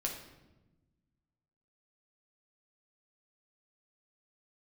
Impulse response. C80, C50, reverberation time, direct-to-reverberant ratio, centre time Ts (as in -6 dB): 8.5 dB, 5.5 dB, 1.1 s, -0.5 dB, 31 ms